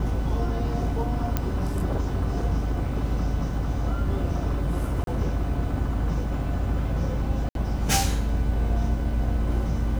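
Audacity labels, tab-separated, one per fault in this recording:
1.370000	1.370000	pop -10 dBFS
5.040000	5.070000	gap 32 ms
7.490000	7.550000	gap 62 ms

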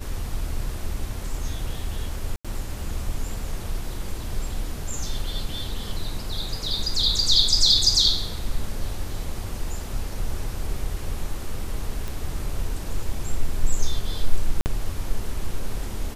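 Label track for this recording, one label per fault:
2.360000	2.450000	gap 86 ms
12.080000	12.080000	pop
14.610000	14.660000	gap 49 ms

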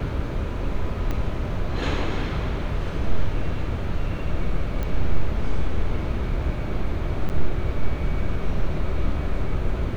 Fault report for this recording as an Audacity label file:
1.110000	1.110000	pop -15 dBFS
4.830000	4.830000	pop -16 dBFS
7.290000	7.300000	gap 9 ms

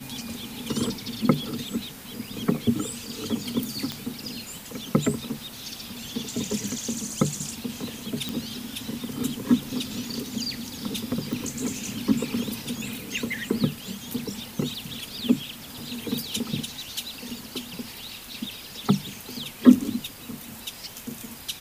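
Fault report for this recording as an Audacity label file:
3.920000	3.920000	pop -14 dBFS
8.290000	8.290000	pop
11.330000	11.330000	pop

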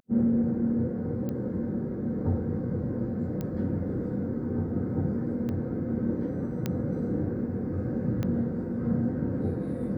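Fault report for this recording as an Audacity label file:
1.290000	1.290000	pop -22 dBFS
3.410000	3.410000	pop -21 dBFS
5.490000	5.490000	pop -23 dBFS
6.660000	6.660000	pop -15 dBFS
8.230000	8.230000	pop -19 dBFS

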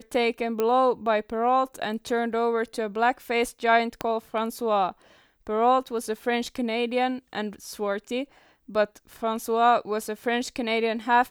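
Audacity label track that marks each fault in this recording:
0.600000	0.600000	pop -13 dBFS
4.010000	4.010000	pop -12 dBFS

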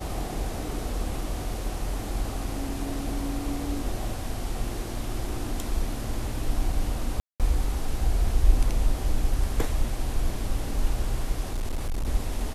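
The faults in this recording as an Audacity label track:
7.200000	7.400000	gap 0.197 s
11.530000	12.080000	clipped -24 dBFS

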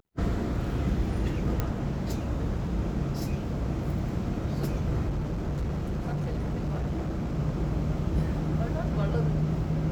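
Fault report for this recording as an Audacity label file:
1.600000	1.600000	pop -14 dBFS
5.080000	7.390000	clipped -26 dBFS

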